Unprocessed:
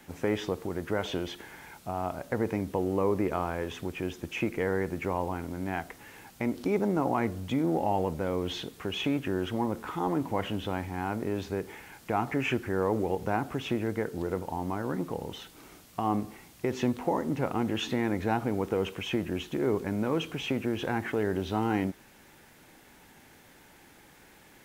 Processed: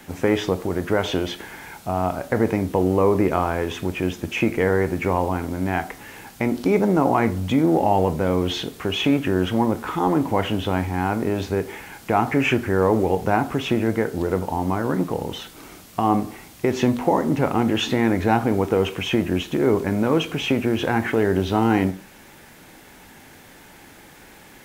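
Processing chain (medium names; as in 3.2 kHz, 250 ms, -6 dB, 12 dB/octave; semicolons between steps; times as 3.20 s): on a send: reverberation RT60 0.30 s, pre-delay 12 ms, DRR 11.5 dB; on the sum: trim +9 dB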